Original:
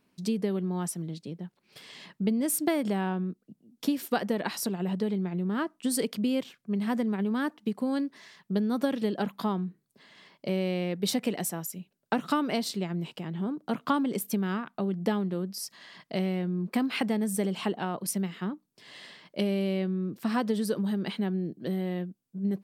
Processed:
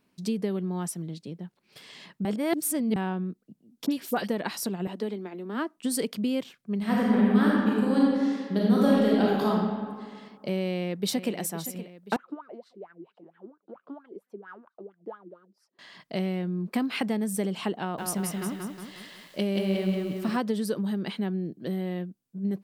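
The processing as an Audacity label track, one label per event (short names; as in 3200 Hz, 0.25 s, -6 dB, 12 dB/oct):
2.250000	2.960000	reverse
3.860000	4.280000	dispersion highs, late by 54 ms, half as late at 2300 Hz
4.870000	5.770000	steep high-pass 220 Hz 48 dB/oct
6.790000	9.480000	reverb throw, RT60 1.9 s, DRR -5.5 dB
10.630000	11.370000	echo throw 0.52 s, feedback 60%, level -13 dB
12.160000	15.790000	wah 4.4 Hz 320–1600 Hz, Q 9.5
17.800000	20.370000	lo-fi delay 0.18 s, feedback 55%, word length 9-bit, level -3 dB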